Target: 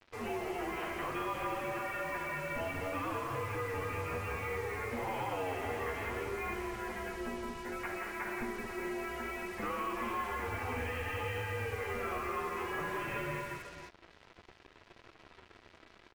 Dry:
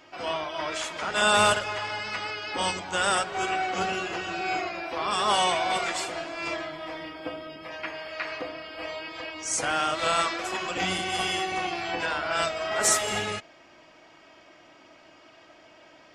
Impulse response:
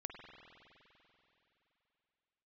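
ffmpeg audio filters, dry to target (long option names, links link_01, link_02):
-filter_complex "[0:a]asoftclip=type=tanh:threshold=-25.5dB,asplit=2[link_01][link_02];[link_02]aecho=0:1:57|172|223|491:0.422|0.473|0.422|0.211[link_03];[link_01][link_03]amix=inputs=2:normalize=0,highpass=frequency=180:width_type=q:width=0.5412,highpass=frequency=180:width_type=q:width=1.307,lowpass=frequency=2800:width_type=q:width=0.5176,lowpass=frequency=2800:width_type=q:width=0.7071,lowpass=frequency=2800:width_type=q:width=1.932,afreqshift=-270,flanger=delay=8.8:depth=3.4:regen=-2:speed=0.6:shape=sinusoidal,acompressor=threshold=-34dB:ratio=4,acrusher=bits=7:mix=0:aa=0.5"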